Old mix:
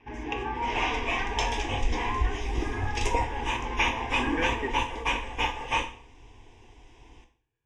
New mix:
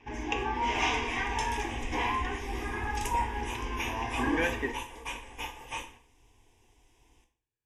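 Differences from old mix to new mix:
speech −11.0 dB
second sound −12.0 dB
master: remove high-frequency loss of the air 120 metres

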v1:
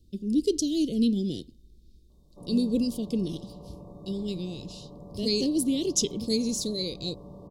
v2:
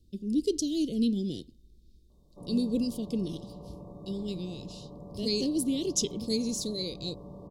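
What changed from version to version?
speech −3.0 dB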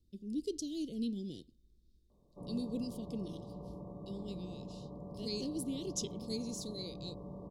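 speech −10.0 dB
reverb: off

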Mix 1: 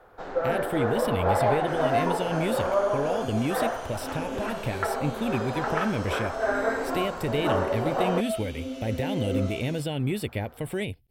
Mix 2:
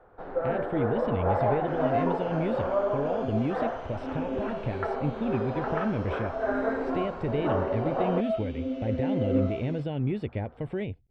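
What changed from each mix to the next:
second sound +4.5 dB
master: add head-to-tape spacing loss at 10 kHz 38 dB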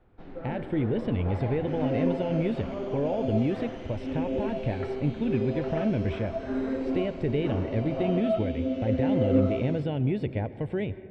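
first sound: add flat-topped bell 840 Hz −14 dB 2.3 octaves
reverb: on, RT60 2.1 s

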